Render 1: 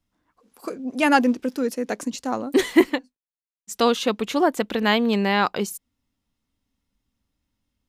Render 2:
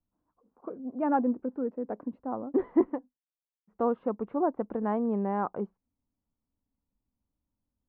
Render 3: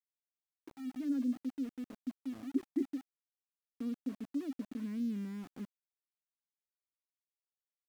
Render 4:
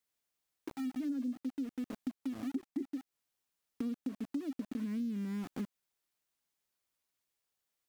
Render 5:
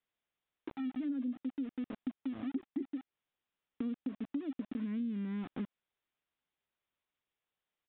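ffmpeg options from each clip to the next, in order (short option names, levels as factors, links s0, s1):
-af "lowpass=f=1100:w=0.5412,lowpass=f=1100:w=1.3066,volume=0.422"
-filter_complex "[0:a]asubboost=boost=6.5:cutoff=150,asplit=3[s0][s1][s2];[s0]bandpass=f=270:t=q:w=8,volume=1[s3];[s1]bandpass=f=2290:t=q:w=8,volume=0.501[s4];[s2]bandpass=f=3010:t=q:w=8,volume=0.355[s5];[s3][s4][s5]amix=inputs=3:normalize=0,aeval=exprs='val(0)*gte(abs(val(0)),0.00376)':c=same"
-af "acompressor=threshold=0.00562:ratio=6,volume=3.16"
-af "aresample=8000,aresample=44100"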